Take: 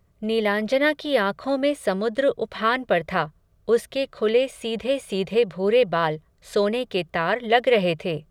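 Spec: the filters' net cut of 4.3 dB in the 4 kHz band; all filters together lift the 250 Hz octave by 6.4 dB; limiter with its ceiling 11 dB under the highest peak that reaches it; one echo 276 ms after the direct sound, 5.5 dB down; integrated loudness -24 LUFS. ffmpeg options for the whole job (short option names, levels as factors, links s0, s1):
-af "equalizer=f=250:t=o:g=8,equalizer=f=4000:t=o:g=-6.5,alimiter=limit=0.15:level=0:latency=1,aecho=1:1:276:0.531,volume=1.12"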